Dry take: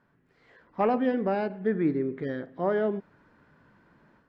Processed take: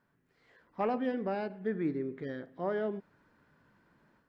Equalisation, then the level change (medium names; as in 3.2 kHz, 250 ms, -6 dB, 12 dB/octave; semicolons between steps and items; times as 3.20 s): treble shelf 4.2 kHz +7.5 dB; -7.0 dB